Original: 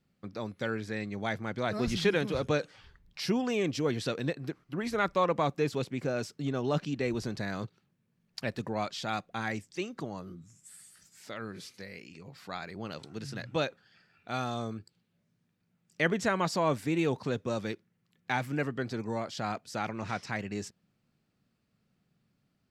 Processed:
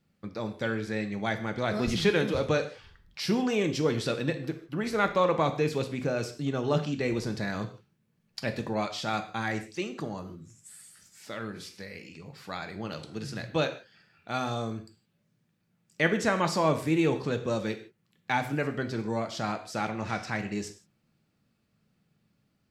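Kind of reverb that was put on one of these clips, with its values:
reverb whose tail is shaped and stops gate 190 ms falling, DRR 6.5 dB
level +2 dB

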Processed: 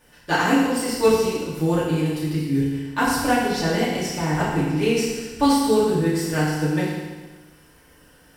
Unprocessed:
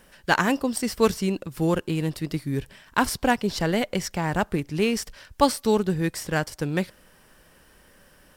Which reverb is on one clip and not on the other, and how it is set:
feedback delay network reverb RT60 1.3 s, low-frequency decay 1.05×, high-frequency decay 1×, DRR −9.5 dB
level −7.5 dB

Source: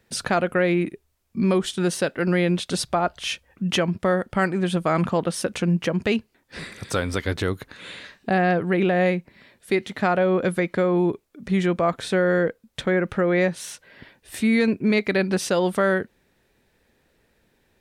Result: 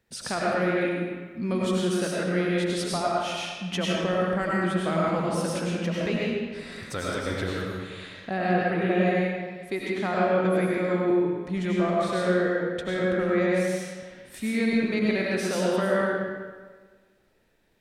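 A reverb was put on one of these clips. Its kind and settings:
comb and all-pass reverb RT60 1.5 s, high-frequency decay 0.8×, pre-delay 60 ms, DRR −5 dB
level −9 dB

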